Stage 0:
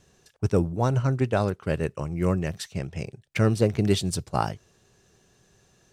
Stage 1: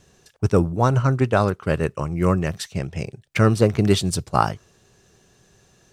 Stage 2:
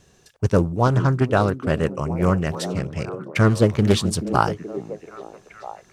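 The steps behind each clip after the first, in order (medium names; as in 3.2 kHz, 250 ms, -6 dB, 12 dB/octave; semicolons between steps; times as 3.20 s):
dynamic bell 1.2 kHz, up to +6 dB, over -45 dBFS, Q 2.2; trim +4.5 dB
repeats whose band climbs or falls 429 ms, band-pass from 240 Hz, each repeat 0.7 oct, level -6.5 dB; loudspeaker Doppler distortion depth 0.42 ms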